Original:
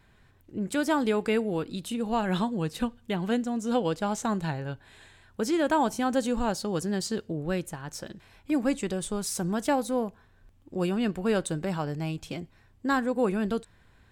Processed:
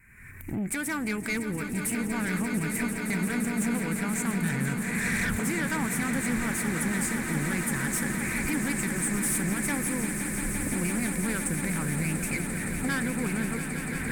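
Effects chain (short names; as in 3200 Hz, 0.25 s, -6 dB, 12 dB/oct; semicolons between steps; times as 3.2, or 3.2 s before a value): recorder AGC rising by 45 dB/s; EQ curve 220 Hz 0 dB, 700 Hz -15 dB, 2300 Hz +14 dB, 3400 Hz -28 dB, 8700 Hz +11 dB; tube stage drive 26 dB, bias 0.25; on a send: swelling echo 0.172 s, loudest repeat 8, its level -11 dB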